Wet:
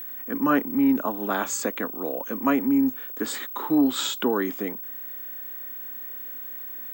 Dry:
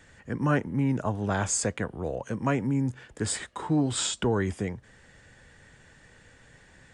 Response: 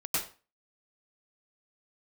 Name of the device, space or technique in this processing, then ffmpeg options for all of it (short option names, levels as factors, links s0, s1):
old television with a line whistle: -af "highpass=f=230:w=0.5412,highpass=f=230:w=1.3066,equalizer=f=270:t=q:w=4:g=8,equalizer=f=1200:t=q:w=4:g=7,equalizer=f=3700:t=q:w=4:g=4,equalizer=f=5200:t=q:w=4:g=-5,lowpass=f=7200:w=0.5412,lowpass=f=7200:w=1.3066,aeval=exprs='val(0)+0.0178*sin(2*PI*15734*n/s)':c=same,volume=1.19"